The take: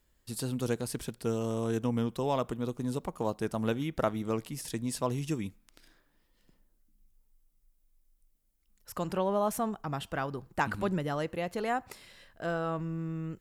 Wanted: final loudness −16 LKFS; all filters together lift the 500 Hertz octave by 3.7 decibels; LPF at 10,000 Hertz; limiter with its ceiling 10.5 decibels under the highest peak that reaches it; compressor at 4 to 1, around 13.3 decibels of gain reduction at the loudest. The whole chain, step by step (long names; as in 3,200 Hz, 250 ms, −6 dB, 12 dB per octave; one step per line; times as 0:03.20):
low-pass filter 10,000 Hz
parametric band 500 Hz +4.5 dB
downward compressor 4 to 1, threshold −39 dBFS
level +29.5 dB
brickwall limiter −6 dBFS